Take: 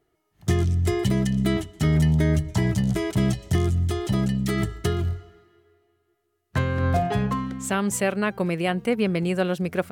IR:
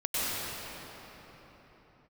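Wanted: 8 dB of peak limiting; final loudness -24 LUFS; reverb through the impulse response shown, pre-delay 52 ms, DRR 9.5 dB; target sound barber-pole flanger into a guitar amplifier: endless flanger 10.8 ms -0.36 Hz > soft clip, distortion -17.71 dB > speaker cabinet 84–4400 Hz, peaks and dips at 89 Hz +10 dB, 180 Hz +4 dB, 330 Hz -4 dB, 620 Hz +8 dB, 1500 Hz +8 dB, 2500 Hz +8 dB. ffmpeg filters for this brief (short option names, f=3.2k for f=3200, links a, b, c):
-filter_complex "[0:a]alimiter=limit=-17.5dB:level=0:latency=1,asplit=2[a][b];[1:a]atrim=start_sample=2205,adelay=52[c];[b][c]afir=irnorm=-1:irlink=0,volume=-20.5dB[d];[a][d]amix=inputs=2:normalize=0,asplit=2[e][f];[f]adelay=10.8,afreqshift=-0.36[g];[e][g]amix=inputs=2:normalize=1,asoftclip=threshold=-22dB,highpass=84,equalizer=f=89:t=q:w=4:g=10,equalizer=f=180:t=q:w=4:g=4,equalizer=f=330:t=q:w=4:g=-4,equalizer=f=620:t=q:w=4:g=8,equalizer=f=1.5k:t=q:w=4:g=8,equalizer=f=2.5k:t=q:w=4:g=8,lowpass=f=4.4k:w=0.5412,lowpass=f=4.4k:w=1.3066,volume=5dB"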